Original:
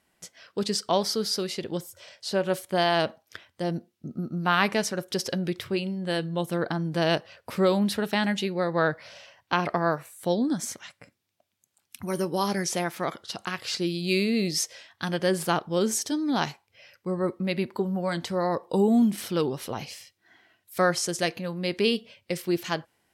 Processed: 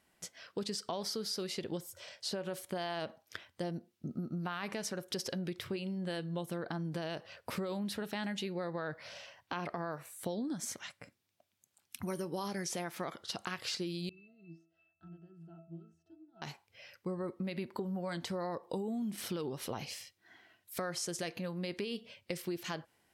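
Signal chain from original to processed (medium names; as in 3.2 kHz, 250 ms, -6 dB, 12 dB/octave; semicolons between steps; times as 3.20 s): peak limiter -18.5 dBFS, peak gain reduction 10.5 dB; compression 5:1, threshold -33 dBFS, peak gain reduction 10.5 dB; 14.09–16.42 s: pitch-class resonator E, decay 0.45 s; trim -2 dB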